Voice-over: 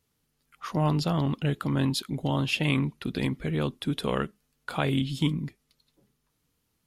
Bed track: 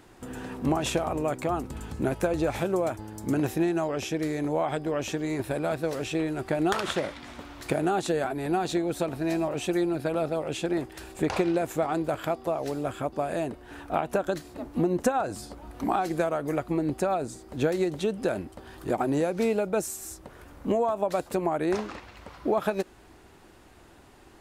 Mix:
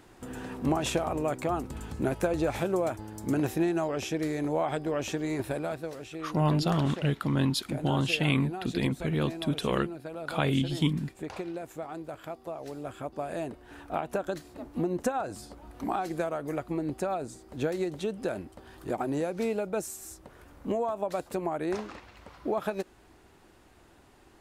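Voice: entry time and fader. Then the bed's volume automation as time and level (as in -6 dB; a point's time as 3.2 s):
5.60 s, -0.5 dB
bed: 5.47 s -1.5 dB
6.08 s -11.5 dB
12.19 s -11.5 dB
13.42 s -4.5 dB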